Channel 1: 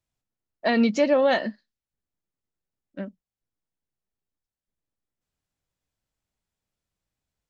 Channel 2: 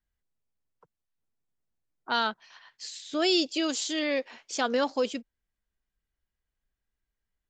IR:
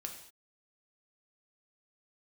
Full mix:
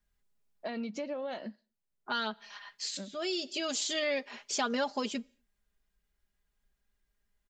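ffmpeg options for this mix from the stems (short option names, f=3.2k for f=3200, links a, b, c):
-filter_complex "[0:a]bandreject=f=1.8k:w=12,acompressor=threshold=-25dB:ratio=3,volume=-9.5dB,asplit=3[a][b][c];[b]volume=-22.5dB[d];[1:a]aecho=1:1:4.9:0.71,volume=2.5dB,asplit=2[e][f];[f]volume=-22dB[g];[c]apad=whole_len=330557[h];[e][h]sidechaincompress=threshold=-56dB:ratio=5:attack=11:release=700[i];[2:a]atrim=start_sample=2205[j];[d][g]amix=inputs=2:normalize=0[k];[k][j]afir=irnorm=-1:irlink=0[l];[a][i][l]amix=inputs=3:normalize=0,acompressor=threshold=-34dB:ratio=2"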